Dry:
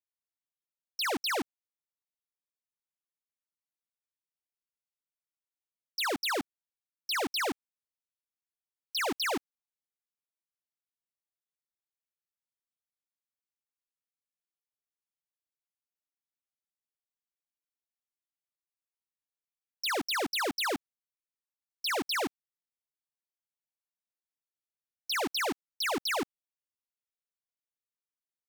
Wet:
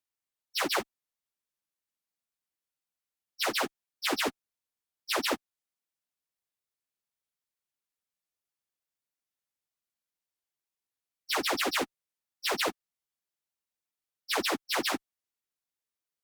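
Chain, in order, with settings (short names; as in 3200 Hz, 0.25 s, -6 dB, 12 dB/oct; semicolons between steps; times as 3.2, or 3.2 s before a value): plain phase-vocoder stretch 0.57×; added harmonics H 7 -42 dB, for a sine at -22 dBFS; gain +6.5 dB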